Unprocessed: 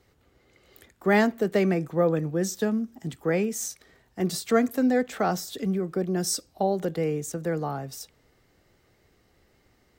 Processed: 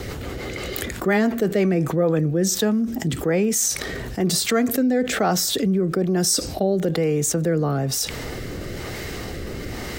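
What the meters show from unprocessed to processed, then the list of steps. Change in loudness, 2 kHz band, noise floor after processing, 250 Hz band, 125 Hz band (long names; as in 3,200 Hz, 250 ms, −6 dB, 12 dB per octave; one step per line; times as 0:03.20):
+4.5 dB, +4.5 dB, −32 dBFS, +5.5 dB, +7.5 dB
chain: rotating-speaker cabinet horn 6 Hz, later 1.1 Hz, at 0:01.50
envelope flattener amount 70%
level +3 dB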